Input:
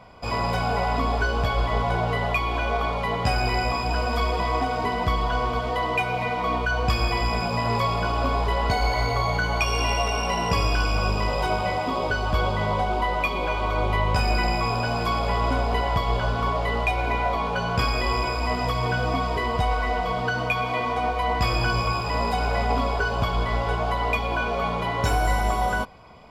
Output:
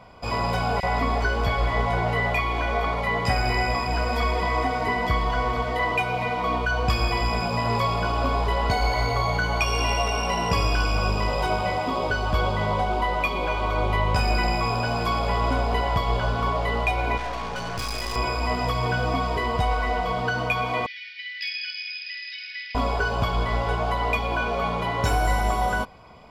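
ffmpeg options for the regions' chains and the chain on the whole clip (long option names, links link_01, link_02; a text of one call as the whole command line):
ffmpeg -i in.wav -filter_complex "[0:a]asettb=1/sr,asplit=3[link_01][link_02][link_03];[link_01]atrim=end=0.804[link_04];[link_02]atrim=start=0.8:end=5.92,asetpts=PTS-STARTPTS,afade=type=in:duration=0.004:curve=qsin,afade=type=out:start_time=5.116:duration=0.004:curve=qsin,equalizer=frequency=2000:width_type=o:width=0.29:gain=11.5,acrossover=split=2500[link_05][link_06];[link_05]adelay=30[link_07];[link_07][link_06]amix=inputs=2:normalize=0,atrim=end_sample=225792[link_08];[link_03]atrim=start=5.916[link_09];[link_04][link_08]acrossfade=duration=0.004:curve1=hsin:curve2=qsin[link_10];[link_10][link_09]acrossfade=duration=0.004:curve1=qsin:curve2=hsin,asettb=1/sr,asplit=3[link_11][link_12][link_13];[link_11]atrim=end=17.174[link_14];[link_12]atrim=start=17.17:end=18.16,asetpts=PTS-STARTPTS,afade=type=in:duration=0.004:curve=qsin,afade=type=out:start_time=0.986:duration=0.004:curve=qsin,equalizer=frequency=5800:width_type=o:width=0.81:gain=9,aeval=exprs='(tanh(22.4*val(0)+0.65)-tanh(0.65))/22.4':channel_layout=same[link_15];[link_13]atrim=start=18.156[link_16];[link_14][link_15]acrossfade=duration=0.004:curve1=hsin:curve2=qsin[link_17];[link_17][link_16]acrossfade=duration=0.004:curve1=qsin:curve2=hsin,asettb=1/sr,asplit=3[link_18][link_19][link_20];[link_18]atrim=end=20.864[link_21];[link_19]atrim=start=20.86:end=22.75,asetpts=PTS-STARTPTS,afade=type=in:duration=0.004:curve=qsin,afade=type=out:start_time=1.886:duration=0.004:curve=qsin,asuperpass=centerf=3100:order=20:qfactor=0.81,volume=21dB,asoftclip=hard,volume=-21dB[link_22];[link_20]atrim=start=22.746[link_23];[link_21][link_22]acrossfade=duration=0.004:curve1=hsin:curve2=qsin[link_24];[link_24][link_23]acrossfade=duration=0.004:curve1=qsin:curve2=hsin" out.wav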